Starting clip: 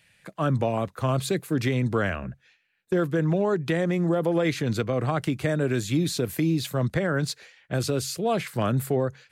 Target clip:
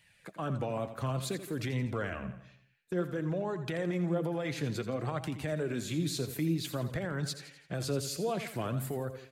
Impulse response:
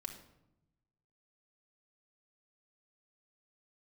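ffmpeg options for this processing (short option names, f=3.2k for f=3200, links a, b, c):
-af "alimiter=limit=-21dB:level=0:latency=1:release=178,aecho=1:1:84|168|252|336|420:0.266|0.128|0.0613|0.0294|0.0141,flanger=delay=1:depth=6.4:regen=53:speed=0.56:shape=sinusoidal"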